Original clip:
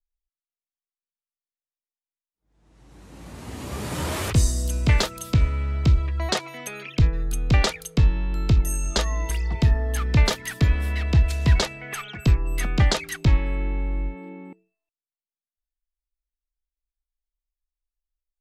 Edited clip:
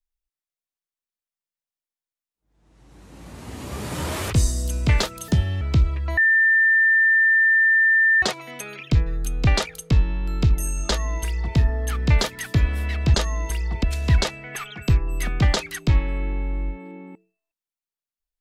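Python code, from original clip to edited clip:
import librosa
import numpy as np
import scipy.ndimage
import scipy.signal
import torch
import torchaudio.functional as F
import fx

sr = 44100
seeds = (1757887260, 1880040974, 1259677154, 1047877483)

y = fx.edit(x, sr, fx.speed_span(start_s=5.28, length_s=0.45, speed=1.35),
    fx.insert_tone(at_s=6.29, length_s=2.05, hz=1790.0, db=-13.5),
    fx.duplicate(start_s=8.94, length_s=0.69, to_s=11.21), tone=tone)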